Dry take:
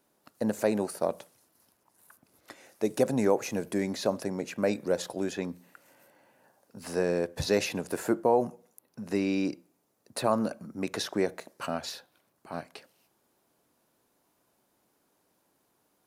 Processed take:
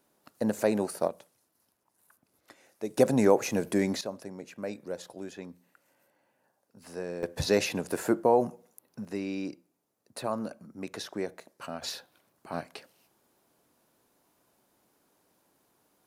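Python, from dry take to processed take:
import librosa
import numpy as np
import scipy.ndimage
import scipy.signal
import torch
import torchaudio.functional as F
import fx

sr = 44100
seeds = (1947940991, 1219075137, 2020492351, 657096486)

y = fx.gain(x, sr, db=fx.steps((0.0, 0.5), (1.08, -6.5), (2.98, 3.0), (4.01, -9.0), (7.23, 1.0), (9.05, -6.0), (11.82, 2.0)))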